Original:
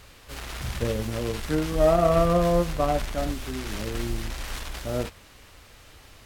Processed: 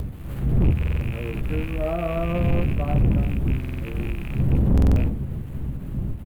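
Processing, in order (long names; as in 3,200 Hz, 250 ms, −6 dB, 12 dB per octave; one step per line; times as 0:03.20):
loose part that buzzes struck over −32 dBFS, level −13 dBFS
wind on the microphone 160 Hz −20 dBFS
bit reduction 7 bits
drawn EQ curve 120 Hz 0 dB, 2,800 Hz −12 dB, 5,400 Hz −24 dB, 14,000 Hz −2 dB
upward compression, threshold −25 dBFS
double-tracking delay 15 ms −11 dB
on a send at −22 dB: convolution reverb RT60 1.1 s, pre-delay 3 ms
on the sum: soft clipping −13 dBFS, distortion −11 dB
high-shelf EQ 12,000 Hz −12 dB
buffer that repeats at 0:00.78/0:03.59/0:04.73, samples 2,048, times 4
every ending faded ahead of time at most 180 dB per second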